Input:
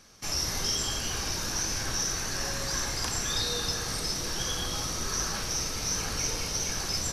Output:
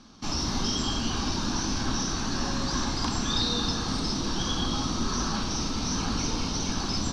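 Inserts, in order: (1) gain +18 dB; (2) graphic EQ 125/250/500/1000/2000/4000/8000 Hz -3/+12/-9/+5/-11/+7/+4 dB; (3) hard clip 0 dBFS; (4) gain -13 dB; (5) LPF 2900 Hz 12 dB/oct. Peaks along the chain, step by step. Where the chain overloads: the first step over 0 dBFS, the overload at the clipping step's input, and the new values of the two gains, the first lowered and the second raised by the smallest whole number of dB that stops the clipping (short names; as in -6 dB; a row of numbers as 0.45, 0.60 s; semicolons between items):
+2.0, +5.5, 0.0, -13.0, -15.0 dBFS; step 1, 5.5 dB; step 1 +12 dB, step 4 -7 dB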